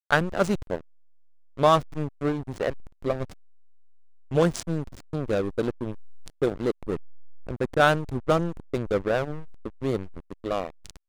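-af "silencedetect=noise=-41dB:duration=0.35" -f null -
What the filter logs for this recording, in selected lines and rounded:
silence_start: 0.81
silence_end: 1.57 | silence_duration: 0.77
silence_start: 3.33
silence_end: 4.31 | silence_duration: 0.99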